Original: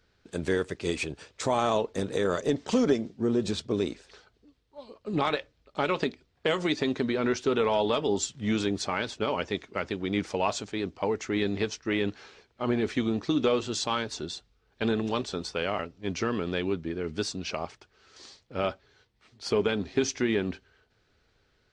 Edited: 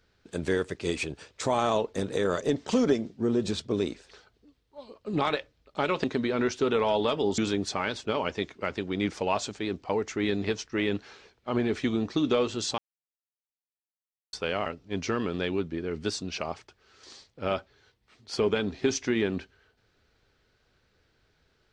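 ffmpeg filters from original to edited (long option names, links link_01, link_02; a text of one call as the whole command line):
ffmpeg -i in.wav -filter_complex "[0:a]asplit=5[link_01][link_02][link_03][link_04][link_05];[link_01]atrim=end=6.042[link_06];[link_02]atrim=start=6.888:end=8.232[link_07];[link_03]atrim=start=8.508:end=13.91,asetpts=PTS-STARTPTS,afade=type=out:start_time=5.398:duration=0.004:curve=hsin[link_08];[link_04]atrim=start=13.91:end=15.46,asetpts=PTS-STARTPTS,volume=0[link_09];[link_05]atrim=start=15.46,asetpts=PTS-STARTPTS,afade=type=in:duration=0.004:curve=hsin[link_10];[link_06][link_07]acrossfade=duration=0.004:curve1=hsin:curve2=hsin[link_11];[link_08][link_09][link_10]concat=n=3:v=0:a=1[link_12];[link_11][link_12]acrossfade=duration=0.004:curve1=hsin:curve2=hsin" out.wav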